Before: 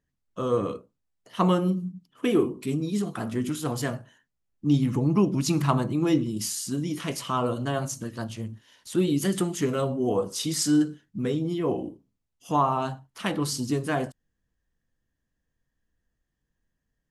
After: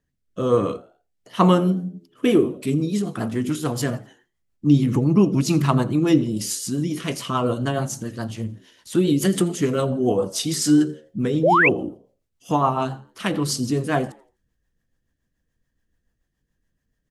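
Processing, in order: rotary speaker horn 1.2 Hz, later 7 Hz, at 1.73; frequency-shifting echo 84 ms, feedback 38%, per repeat +79 Hz, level -22.5 dB; painted sound rise, 11.43–11.69, 440–2800 Hz -22 dBFS; gain +6.5 dB

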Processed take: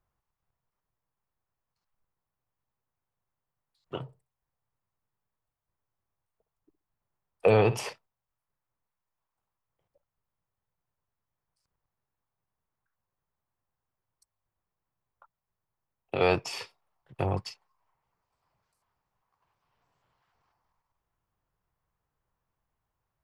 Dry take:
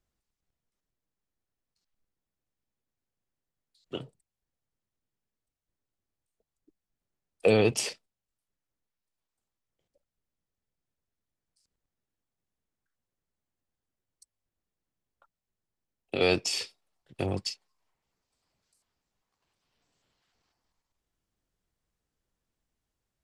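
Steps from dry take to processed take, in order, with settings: ten-band EQ 125 Hz +6 dB, 250 Hz -6 dB, 1000 Hz +10 dB, 4000 Hz -6 dB, 8000 Hz -10 dB; 4.03–7.9 flutter echo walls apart 10.7 m, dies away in 0.25 s

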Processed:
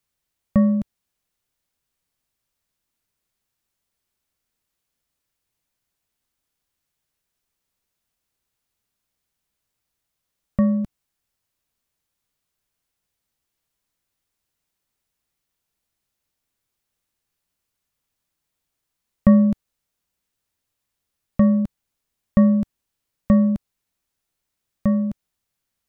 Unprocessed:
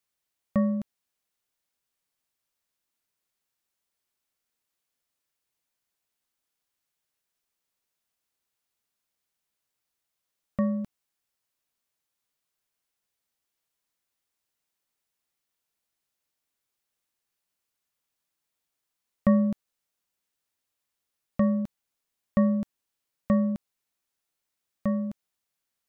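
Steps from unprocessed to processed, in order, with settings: low shelf 180 Hz +11.5 dB; gain +3 dB

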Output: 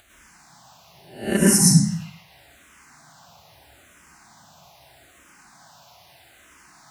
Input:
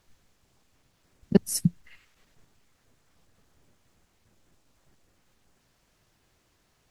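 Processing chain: spectral swells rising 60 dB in 0.50 s; HPF 75 Hz; resonant low shelf 590 Hz -7 dB, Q 3; upward compressor, threshold -55 dBFS; plate-style reverb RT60 0.71 s, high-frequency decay 0.85×, pre-delay 90 ms, DRR -4.5 dB; endless phaser -0.79 Hz; gain +8.5 dB

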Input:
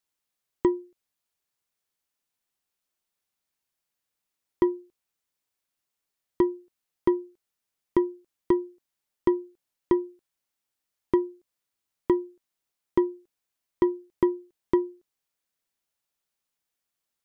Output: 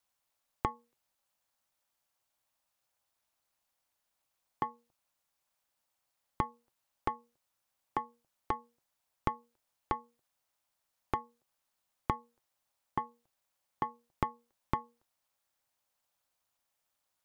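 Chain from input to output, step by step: EQ curve 250 Hz 0 dB, 370 Hz -29 dB, 660 Hz +7 dB, 1300 Hz +2 dB, 1900 Hz -1 dB; compressor, threshold -30 dBFS, peak gain reduction 6 dB; ring modulator 120 Hz; gain +5 dB

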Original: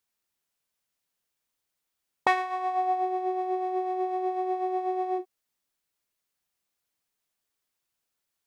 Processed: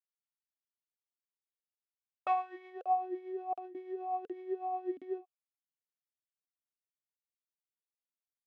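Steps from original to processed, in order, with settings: gate with hold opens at -23 dBFS; crackling interface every 0.72 s, samples 2048, zero, from 0.65; vowel sweep a-i 1.7 Hz

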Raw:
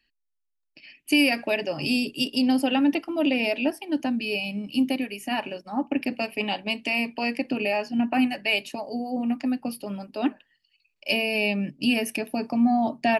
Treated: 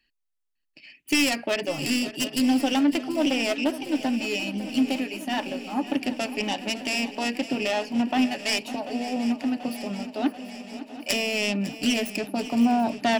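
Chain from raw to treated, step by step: self-modulated delay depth 0.19 ms; swung echo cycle 0.737 s, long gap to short 3:1, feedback 70%, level -15 dB

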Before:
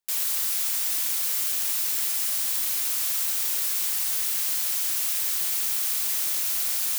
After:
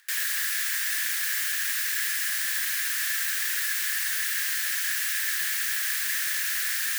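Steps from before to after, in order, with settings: high shelf 6800 Hz -4 dB; upward compressor, threshold -46 dBFS; resonant high-pass 1700 Hz, resonance Q 9.6

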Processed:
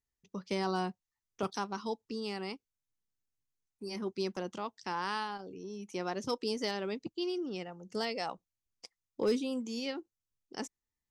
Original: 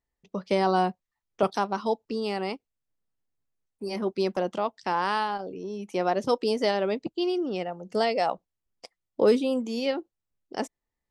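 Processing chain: fifteen-band EQ 100 Hz +4 dB, 630 Hz -9 dB, 6300 Hz +8 dB; overloaded stage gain 15 dB; gain -7 dB

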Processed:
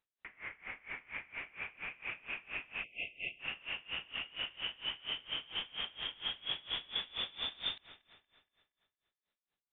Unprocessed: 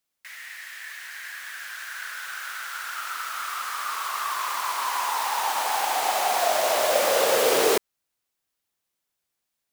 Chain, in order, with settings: reverse; compressor 5:1, threshold -32 dBFS, peak gain reduction 14 dB; reverse; inverted band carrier 4000 Hz; on a send: analogue delay 0.235 s, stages 4096, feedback 48%, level -14 dB; on the sum: spring tank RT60 2.1 s, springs 55 ms, chirp 35 ms, DRR 17.5 dB; spectral delete 2.84–3.4, 750–2000 Hz; dB-linear tremolo 4.3 Hz, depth 24 dB; gain -1 dB

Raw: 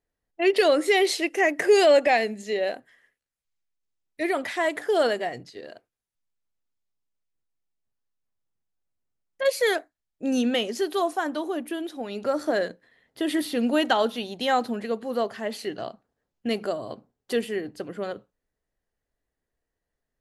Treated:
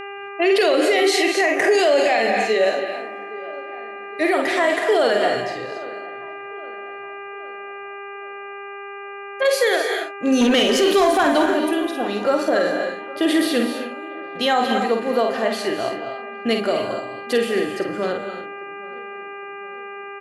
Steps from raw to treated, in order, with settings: 13.6–14.35 fade out exponential; doubler 49 ms -5.5 dB; 10.41–11.46 sample leveller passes 2; low shelf 200 Hz -6 dB; buzz 400 Hz, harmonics 7, -41 dBFS -3 dB/oct; high shelf 8900 Hz -5.5 dB; dark delay 0.813 s, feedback 48%, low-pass 1700 Hz, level -21 dB; non-linear reverb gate 0.3 s rising, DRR 7 dB; maximiser +16 dB; gain -8 dB

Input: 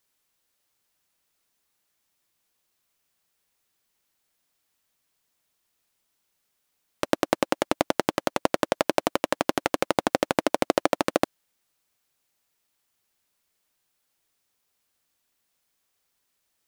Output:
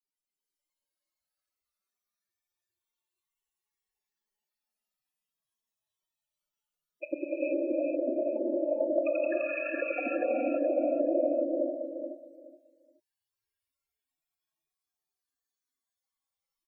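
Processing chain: rattling part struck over -38 dBFS, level -12 dBFS; 9.06–9.71 steep high-pass 1100 Hz 96 dB/oct; loudest bins only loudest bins 8; on a send: feedback echo 0.423 s, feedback 21%, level -7 dB; on the sum: non-linear reverb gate 0.5 s rising, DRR -6 dB; gain -5.5 dB

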